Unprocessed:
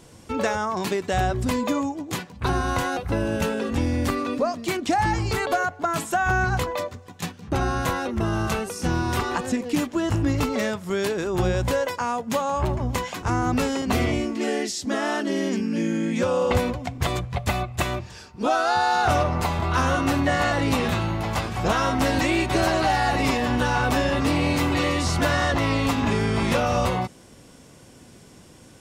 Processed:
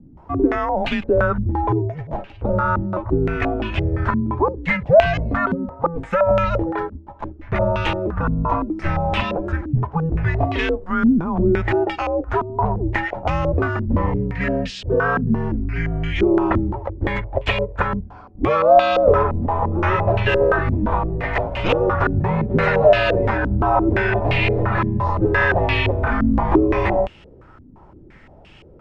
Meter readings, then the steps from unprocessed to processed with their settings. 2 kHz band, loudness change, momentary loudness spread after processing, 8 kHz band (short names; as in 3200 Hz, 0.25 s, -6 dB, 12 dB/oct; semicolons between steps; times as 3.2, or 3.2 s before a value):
+3.5 dB, +4.0 dB, 8 LU, under -15 dB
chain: frequency shift -170 Hz; stepped low-pass 5.8 Hz 240–2800 Hz; gain +2 dB